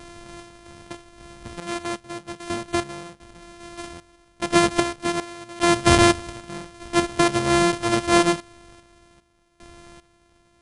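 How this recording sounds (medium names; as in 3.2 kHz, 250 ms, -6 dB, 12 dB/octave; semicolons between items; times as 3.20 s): a buzz of ramps at a fixed pitch in blocks of 128 samples; random-step tremolo 2.5 Hz, depth 95%; MP2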